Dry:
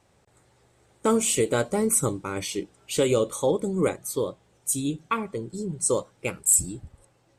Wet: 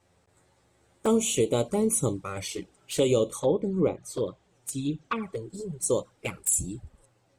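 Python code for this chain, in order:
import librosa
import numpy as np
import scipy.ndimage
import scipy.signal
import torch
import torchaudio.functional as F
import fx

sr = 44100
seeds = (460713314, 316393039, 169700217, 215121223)

y = fx.env_flanger(x, sr, rest_ms=11.7, full_db=-21.0)
y = fx.env_lowpass_down(y, sr, base_hz=2200.0, full_db=-21.0, at=(3.39, 5.21), fade=0.02)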